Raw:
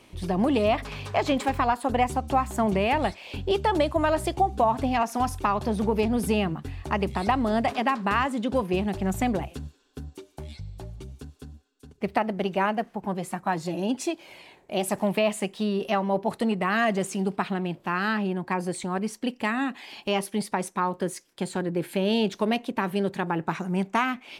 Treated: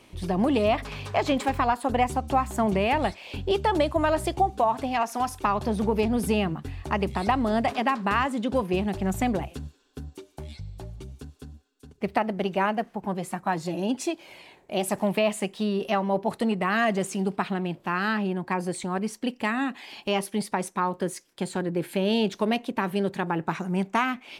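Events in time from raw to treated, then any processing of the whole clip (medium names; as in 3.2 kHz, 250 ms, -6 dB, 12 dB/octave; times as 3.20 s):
4.50–5.44 s: bass shelf 200 Hz -11.5 dB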